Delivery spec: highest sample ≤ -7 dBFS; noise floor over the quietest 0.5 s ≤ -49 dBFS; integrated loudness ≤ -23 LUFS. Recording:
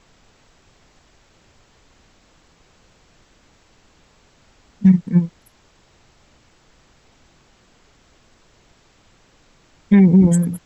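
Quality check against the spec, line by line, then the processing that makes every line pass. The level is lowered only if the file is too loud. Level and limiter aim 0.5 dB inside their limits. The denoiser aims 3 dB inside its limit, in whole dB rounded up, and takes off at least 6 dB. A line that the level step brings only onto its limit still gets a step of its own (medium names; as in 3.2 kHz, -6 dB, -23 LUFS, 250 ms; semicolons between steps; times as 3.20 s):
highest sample -4.0 dBFS: fail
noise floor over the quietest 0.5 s -55 dBFS: pass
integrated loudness -15.0 LUFS: fail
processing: trim -8.5 dB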